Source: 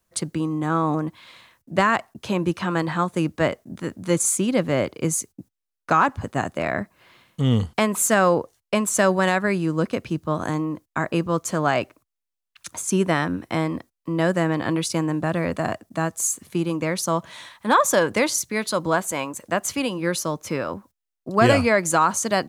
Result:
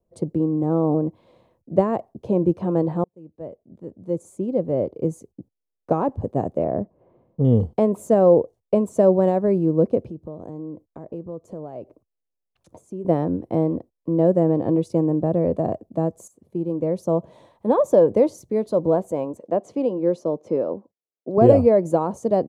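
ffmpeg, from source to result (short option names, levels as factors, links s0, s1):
-filter_complex "[0:a]asettb=1/sr,asplit=3[s0][s1][s2];[s0]atrim=end=6.644[s3];[s1]atrim=start=6.64:end=7.45,asetpts=PTS-STARTPTS,afade=t=in:d=0.004:c=qsin,afade=t=out:st=0.806:d=0.004:c=qsin,lowpass=1500[s4];[s2]atrim=start=7.446[s5];[s3][s4]acrossfade=d=0.004:c1=hsin:c2=qsin[s6];[s6][s5]acrossfade=d=0.004:c1=qsin:c2=hsin,asettb=1/sr,asplit=3[s7][s8][s9];[s7]atrim=end=10.104[s10];[s8]atrim=start=10.1:end=13.05,asetpts=PTS-STARTPTS,afade=t=in:d=0.004:c=qsin,afade=t=out:st=2.946:d=0.004:c=qsin,acompressor=threshold=0.0141:ratio=3:attack=3.2:release=140:knee=1:detection=peak[s11];[s9]atrim=start=13.046[s12];[s10][s11]acrossfade=d=0.004:c1=hsin:c2=qsin[s13];[s13][s12]acrossfade=d=0.004:c1=qsin:c2=hsin,asettb=1/sr,asplit=3[s14][s15][s16];[s14]atrim=end=19.374[s17];[s15]atrim=start=19.37:end=21.38,asetpts=PTS-STARTPTS,afade=t=in:d=0.004:c=qsin,afade=t=out:st=2.006:d=0.004:c=qsin,highpass=210,lowpass=6600[s18];[s16]atrim=start=21.376[s19];[s17][s18]acrossfade=d=0.004:c1=hsin:c2=qsin[s20];[s20][s19]acrossfade=d=0.004:c1=qsin:c2=hsin,asplit=3[s21][s22][s23];[s21]atrim=end=3.04,asetpts=PTS-STARTPTS,afade=t=out:st=3.036:d=0.004:c=hsin[s24];[s22]atrim=start=3.04:end=16.28,asetpts=PTS-STARTPTS,afade=t=in:d=2.93,afade=t=out:st=13.236:d=0.004:c=hsin:silence=0.188365[s25];[s23]atrim=start=16.28,asetpts=PTS-STARTPTS,afade=t=in:d=0.82:silence=0.188365[s26];[s24][s25][s26]concat=n=3:v=0:a=1,firequalizer=gain_entry='entry(260,0);entry(470,6);entry(1400,-24)':delay=0.05:min_phase=1,volume=1.26"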